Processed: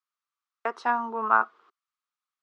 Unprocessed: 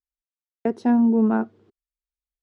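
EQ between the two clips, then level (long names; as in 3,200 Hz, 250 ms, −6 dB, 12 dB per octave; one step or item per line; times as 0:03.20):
high-pass with resonance 1,200 Hz, resonance Q 5.9
high-frequency loss of the air 74 metres
parametric band 1,700 Hz −3.5 dB 0.8 octaves
+5.5 dB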